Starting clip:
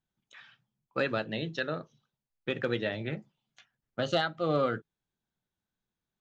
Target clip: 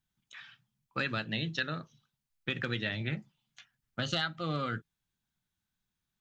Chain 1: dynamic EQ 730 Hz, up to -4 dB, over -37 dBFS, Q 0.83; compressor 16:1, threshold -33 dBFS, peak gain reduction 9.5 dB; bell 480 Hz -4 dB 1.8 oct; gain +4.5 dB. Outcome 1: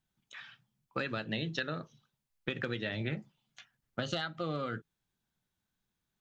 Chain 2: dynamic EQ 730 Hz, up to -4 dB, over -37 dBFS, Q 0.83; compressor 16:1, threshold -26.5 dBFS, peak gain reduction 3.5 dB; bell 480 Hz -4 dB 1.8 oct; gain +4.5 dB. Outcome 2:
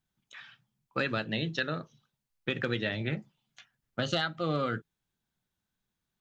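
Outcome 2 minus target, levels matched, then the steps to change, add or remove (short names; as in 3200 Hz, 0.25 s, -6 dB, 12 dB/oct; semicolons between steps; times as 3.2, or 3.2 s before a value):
500 Hz band +4.5 dB
change: bell 480 Hz -11 dB 1.8 oct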